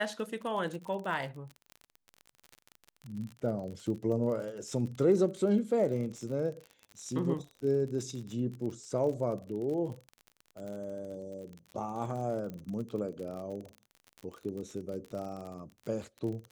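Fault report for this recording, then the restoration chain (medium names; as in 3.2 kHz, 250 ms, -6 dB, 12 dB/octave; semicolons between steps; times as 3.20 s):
crackle 42 per s -38 dBFS
12.50 s: pop -29 dBFS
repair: de-click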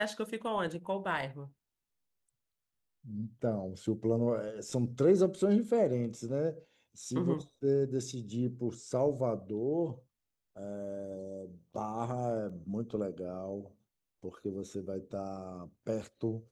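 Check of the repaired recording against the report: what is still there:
12.50 s: pop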